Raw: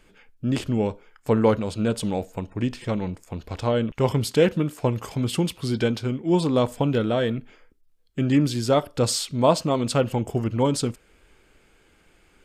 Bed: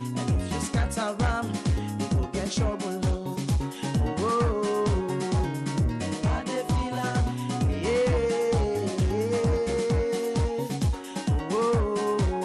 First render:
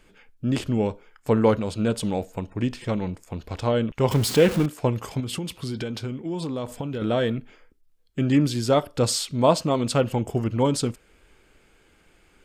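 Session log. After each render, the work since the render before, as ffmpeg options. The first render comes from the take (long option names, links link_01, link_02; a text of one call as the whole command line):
ffmpeg -i in.wav -filter_complex "[0:a]asettb=1/sr,asplit=3[link_01][link_02][link_03];[link_01]atrim=end=4.114[link_04];[link_02]atrim=start=4.11:end=4.66,asetpts=PTS-STARTPTS,afade=type=in:duration=0.004:curve=qsin,afade=type=out:start_time=0.546:duration=0.004:curve=qsin,aeval=exprs='val(0)+0.5*0.0501*sgn(val(0))':channel_layout=same[link_05];[link_03]atrim=start=4.656[link_06];[link_04][link_05]acrossfade=duration=0.004:curve1=hsin:curve2=qsin[link_07];[link_07][link_06]acrossfade=duration=0.004:curve1=qsin:curve2=hsin,asettb=1/sr,asplit=3[link_08][link_09][link_10];[link_08]atrim=end=5.204[link_11];[link_09]atrim=start=5.2:end=7.02,asetpts=PTS-STARTPTS,afade=type=in:duration=0.004:curve=qsin,afade=type=out:start_time=1.816:duration=0.004:curve=qsin,acompressor=threshold=-26dB:ratio=6:attack=3.2:release=140:knee=1:detection=peak[link_12];[link_10]atrim=start=7.016[link_13];[link_11][link_12]acrossfade=duration=0.004:curve1=hsin:curve2=qsin[link_14];[link_14][link_13]acrossfade=duration=0.004:curve1=qsin:curve2=hsin" out.wav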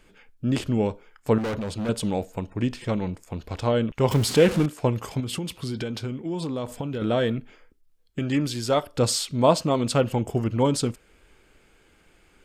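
ffmpeg -i in.wav -filter_complex "[0:a]asettb=1/sr,asplit=3[link_01][link_02][link_03];[link_01]atrim=end=1.384[link_04];[link_02]atrim=start=1.38:end=1.89,asetpts=PTS-STARTPTS,afade=type=in:duration=0.004:curve=qsin,afade=type=out:start_time=0.506:duration=0.004:curve=qsin,volume=26dB,asoftclip=hard,volume=-26dB[link_05];[link_03]atrim=start=1.886[link_06];[link_04][link_05]acrossfade=duration=0.004:curve1=hsin:curve2=qsin[link_07];[link_07][link_06]acrossfade=duration=0.004:curve1=qsin:curve2=hsin,asplit=3[link_08][link_09][link_10];[link_08]afade=type=out:start_time=4.23:duration=0.02[link_11];[link_09]lowpass=12000,afade=type=in:start_time=4.23:duration=0.02,afade=type=out:start_time=4.78:duration=0.02[link_12];[link_10]afade=type=in:start_time=4.78:duration=0.02[link_13];[link_11][link_12][link_13]amix=inputs=3:normalize=0,asettb=1/sr,asplit=3[link_14][link_15][link_16];[link_14]atrim=end=8.194[link_17];[link_15]atrim=start=8.19:end=8.93,asetpts=PTS-STARTPTS,afade=type=in:duration=0.004:curve=qsin,afade=type=out:start_time=0.736:duration=0.004:curve=qsin,equalizer=frequency=180:width_type=o:width=2.9:gain=-5.5[link_18];[link_16]atrim=start=8.926[link_19];[link_17][link_18]acrossfade=duration=0.004:curve1=hsin:curve2=qsin[link_20];[link_20][link_19]acrossfade=duration=0.004:curve1=qsin:curve2=hsin" out.wav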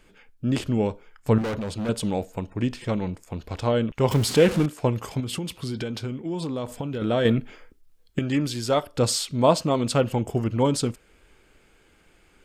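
ffmpeg -i in.wav -filter_complex "[0:a]asettb=1/sr,asplit=3[link_01][link_02][link_03];[link_01]atrim=end=0.914[link_04];[link_02]atrim=start=0.91:end=1.42,asetpts=PTS-STARTPTS,afade=type=in:duration=0.004:curve=qsin,afade=type=out:start_time=0.506:duration=0.004:curve=qsin,asubboost=boost=8.5:cutoff=220[link_05];[link_03]atrim=start=1.416[link_06];[link_04][link_05]acrossfade=duration=0.004:curve1=hsin:curve2=qsin[link_07];[link_07][link_06]acrossfade=duration=0.004:curve1=qsin:curve2=hsin,asplit=3[link_08][link_09][link_10];[link_08]atrim=end=7.252[link_11];[link_09]atrim=start=7.248:end=8.192,asetpts=PTS-STARTPTS,volume=6dB[link_12];[link_10]atrim=start=8.188[link_13];[link_11][link_12]acrossfade=duration=0.004:curve1=hsin:curve2=hsin[link_14];[link_14][link_13]acrossfade=duration=0.004:curve1=hsin:curve2=hsin" out.wav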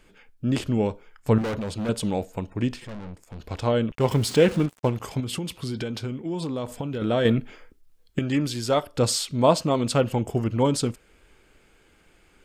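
ffmpeg -i in.wav -filter_complex "[0:a]asettb=1/sr,asplit=3[link_01][link_02][link_03];[link_01]atrim=end=2.804[link_04];[link_02]atrim=start=2.8:end=3.4,asetpts=PTS-STARTPTS,afade=type=in:duration=0.004:curve=qsin,afade=type=out:start_time=0.596:duration=0.004:curve=qsin,aeval=exprs='(tanh(56.2*val(0)+0.65)-tanh(0.65))/56.2':channel_layout=same[link_05];[link_03]atrim=start=3.396[link_06];[link_04][link_05]acrossfade=duration=0.004:curve1=hsin:curve2=qsin[link_07];[link_07][link_06]acrossfade=duration=0.004:curve1=qsin:curve2=hsin,asettb=1/sr,asplit=3[link_08][link_09][link_10];[link_08]atrim=end=3.954[link_11];[link_09]atrim=start=3.95:end=5,asetpts=PTS-STARTPTS,afade=type=in:duration=0.004:curve=qsin,afade=type=out:start_time=1.046:duration=0.004:curve=qsin,aeval=exprs='sgn(val(0))*max(abs(val(0))-0.0126,0)':channel_layout=same[link_12];[link_10]atrim=start=4.996[link_13];[link_11][link_12]acrossfade=duration=0.004:curve1=hsin:curve2=qsin[link_14];[link_14][link_13]acrossfade=duration=0.004:curve1=qsin:curve2=hsin" out.wav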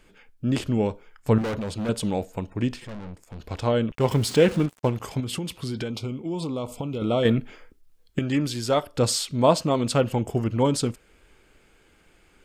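ffmpeg -i in.wav -filter_complex "[0:a]asettb=1/sr,asplit=3[link_01][link_02][link_03];[link_01]atrim=end=5.904[link_04];[link_02]atrim=start=5.9:end=7.23,asetpts=PTS-STARTPTS,afade=type=in:duration=0.004:curve=qsin,afade=type=out:start_time=1.326:duration=0.004:curve=qsin,asuperstop=centerf=1700:order=8:qfactor=2.5[link_05];[link_03]atrim=start=7.226[link_06];[link_04][link_05]acrossfade=duration=0.004:curve1=hsin:curve2=qsin[link_07];[link_07][link_06]acrossfade=duration=0.004:curve1=qsin:curve2=hsin" out.wav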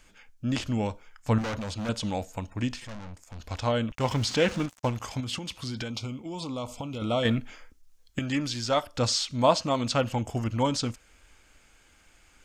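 ffmpeg -i in.wav -filter_complex "[0:a]acrossover=split=5600[link_01][link_02];[link_02]acompressor=threshold=-52dB:ratio=4:attack=1:release=60[link_03];[link_01][link_03]amix=inputs=2:normalize=0,equalizer=frequency=160:width_type=o:width=0.67:gain=-8,equalizer=frequency=400:width_type=o:width=0.67:gain=-11,equalizer=frequency=6300:width_type=o:width=0.67:gain=8" out.wav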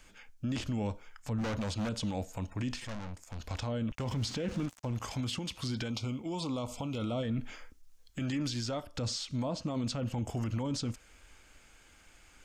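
ffmpeg -i in.wav -filter_complex "[0:a]acrossover=split=430[link_01][link_02];[link_02]acompressor=threshold=-36dB:ratio=4[link_03];[link_01][link_03]amix=inputs=2:normalize=0,alimiter=level_in=1.5dB:limit=-24dB:level=0:latency=1:release=16,volume=-1.5dB" out.wav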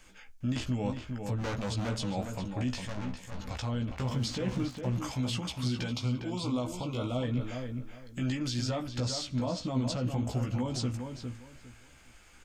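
ffmpeg -i in.wav -filter_complex "[0:a]asplit=2[link_01][link_02];[link_02]adelay=16,volume=-4.5dB[link_03];[link_01][link_03]amix=inputs=2:normalize=0,asplit=2[link_04][link_05];[link_05]adelay=406,lowpass=frequency=2500:poles=1,volume=-6dB,asplit=2[link_06][link_07];[link_07]adelay=406,lowpass=frequency=2500:poles=1,volume=0.22,asplit=2[link_08][link_09];[link_09]adelay=406,lowpass=frequency=2500:poles=1,volume=0.22[link_10];[link_06][link_08][link_10]amix=inputs=3:normalize=0[link_11];[link_04][link_11]amix=inputs=2:normalize=0" out.wav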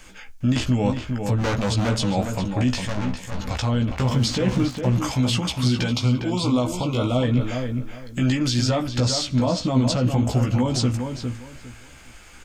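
ffmpeg -i in.wav -af "volume=11dB" out.wav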